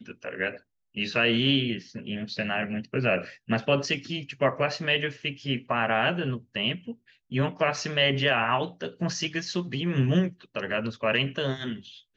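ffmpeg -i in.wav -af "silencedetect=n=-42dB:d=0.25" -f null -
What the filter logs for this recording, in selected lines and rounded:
silence_start: 0.58
silence_end: 0.97 | silence_duration: 0.39
silence_start: 6.93
silence_end: 7.32 | silence_duration: 0.38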